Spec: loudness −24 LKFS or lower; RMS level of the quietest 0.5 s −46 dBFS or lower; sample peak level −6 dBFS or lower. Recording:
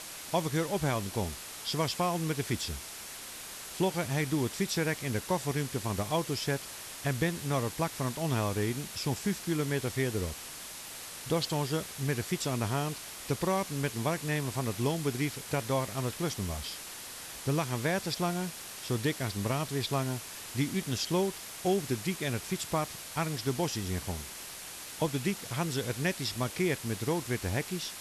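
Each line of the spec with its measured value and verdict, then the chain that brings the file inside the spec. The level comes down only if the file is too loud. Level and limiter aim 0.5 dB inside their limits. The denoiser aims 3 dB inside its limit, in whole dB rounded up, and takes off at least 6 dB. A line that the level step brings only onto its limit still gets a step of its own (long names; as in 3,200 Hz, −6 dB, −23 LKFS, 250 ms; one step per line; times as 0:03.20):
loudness −32.5 LKFS: in spec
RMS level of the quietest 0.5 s −44 dBFS: out of spec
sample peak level −15.5 dBFS: in spec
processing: broadband denoise 6 dB, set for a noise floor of −44 dBFS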